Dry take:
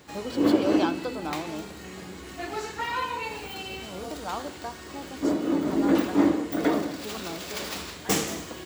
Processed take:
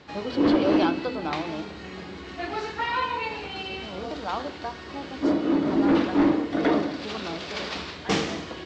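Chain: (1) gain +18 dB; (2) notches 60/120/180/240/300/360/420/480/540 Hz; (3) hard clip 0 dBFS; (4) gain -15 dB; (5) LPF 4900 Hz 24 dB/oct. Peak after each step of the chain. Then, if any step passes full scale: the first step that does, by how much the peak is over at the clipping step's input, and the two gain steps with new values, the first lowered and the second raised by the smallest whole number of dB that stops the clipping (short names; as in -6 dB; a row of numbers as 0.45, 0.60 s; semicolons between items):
+9.5, +9.0, 0.0, -15.0, -14.5 dBFS; step 1, 9.0 dB; step 1 +9 dB, step 4 -6 dB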